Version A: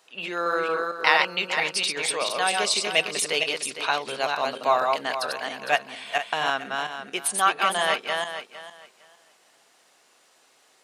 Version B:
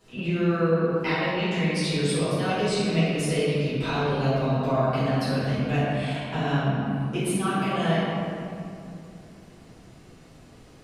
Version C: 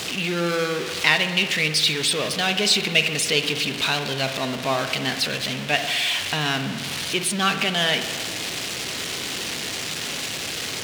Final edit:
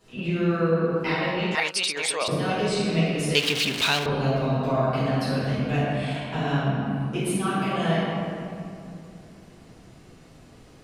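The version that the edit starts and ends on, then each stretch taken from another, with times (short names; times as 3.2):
B
1.55–2.28 from A
3.35–4.06 from C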